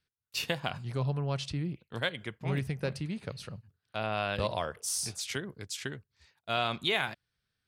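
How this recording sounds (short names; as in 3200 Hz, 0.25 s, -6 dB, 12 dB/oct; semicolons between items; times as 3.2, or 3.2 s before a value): noise floor -86 dBFS; spectral tilt -4.0 dB/oct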